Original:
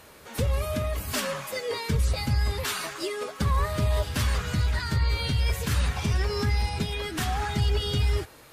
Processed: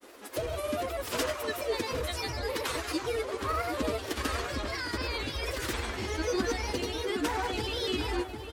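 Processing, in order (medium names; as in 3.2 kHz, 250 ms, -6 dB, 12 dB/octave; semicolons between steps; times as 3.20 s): resonant low shelf 220 Hz -11 dB, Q 3; granulator, pitch spread up and down by 3 st; echo from a far wall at 130 m, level -6 dB; trim -1 dB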